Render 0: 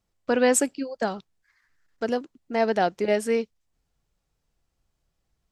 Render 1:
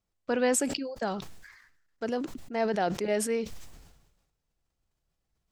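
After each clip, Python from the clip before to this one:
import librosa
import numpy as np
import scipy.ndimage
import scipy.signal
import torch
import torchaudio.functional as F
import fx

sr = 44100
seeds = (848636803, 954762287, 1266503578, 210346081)

y = fx.sustainer(x, sr, db_per_s=53.0)
y = y * 10.0 ** (-6.0 / 20.0)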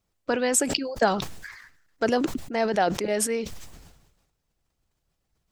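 y = fx.rider(x, sr, range_db=10, speed_s=0.5)
y = fx.hpss(y, sr, part='harmonic', gain_db=-6)
y = y * 10.0 ** (9.0 / 20.0)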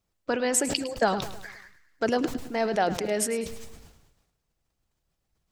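y = fx.echo_feedback(x, sr, ms=105, feedback_pct=48, wet_db=-14.0)
y = y * 10.0 ** (-2.0 / 20.0)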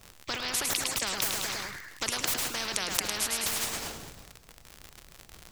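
y = fx.dmg_crackle(x, sr, seeds[0], per_s=79.0, level_db=-51.0)
y = fx.spectral_comp(y, sr, ratio=10.0)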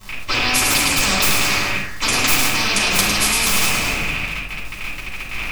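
y = fx.rattle_buzz(x, sr, strikes_db=-53.0, level_db=-21.0)
y = fx.room_shoebox(y, sr, seeds[1], volume_m3=570.0, walls='furnished', distance_m=9.8)
y = y * 10.0 ** (1.5 / 20.0)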